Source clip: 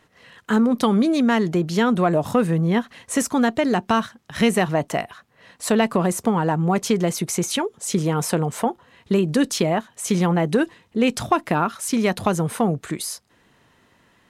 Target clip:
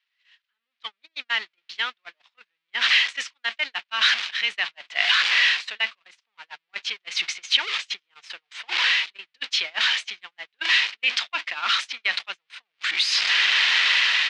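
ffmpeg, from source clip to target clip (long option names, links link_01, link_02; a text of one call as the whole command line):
ffmpeg -i in.wav -filter_complex "[0:a]aeval=exprs='val(0)+0.5*0.0631*sgn(val(0))':channel_layout=same,areverse,acompressor=threshold=-27dB:ratio=16,areverse,highpass=frequency=2400:width_type=q:width=1.5,asplit=2[link_01][link_02];[link_02]aecho=0:1:310:0.0668[link_03];[link_01][link_03]amix=inputs=2:normalize=0,dynaudnorm=framelen=240:gausssize=5:maxgain=16dB,lowpass=frequency=4400:width=0.5412,lowpass=frequency=4400:width=1.3066,agate=range=-44dB:threshold=-25dB:ratio=16:detection=peak,volume=-1dB" out.wav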